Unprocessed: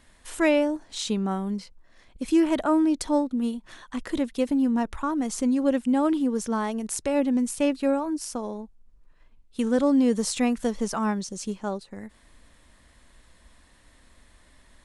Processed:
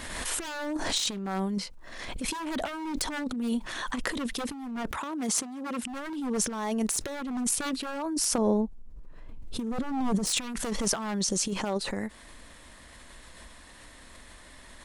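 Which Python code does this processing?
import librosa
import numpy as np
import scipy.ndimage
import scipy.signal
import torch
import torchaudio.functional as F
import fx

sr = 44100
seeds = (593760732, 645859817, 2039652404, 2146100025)

y = fx.low_shelf(x, sr, hz=220.0, db=-6.0)
y = 10.0 ** (-23.5 / 20.0) * (np.abs((y / 10.0 ** (-23.5 / 20.0) + 3.0) % 4.0 - 2.0) - 1.0)
y = fx.over_compress(y, sr, threshold_db=-34.0, ratio=-0.5)
y = fx.highpass(y, sr, hz=130.0, slope=12, at=(4.91, 5.83))
y = fx.tilt_shelf(y, sr, db=7.0, hz=710.0, at=(8.38, 10.27))
y = fx.pre_swell(y, sr, db_per_s=31.0)
y = F.gain(torch.from_numpy(y), 3.0).numpy()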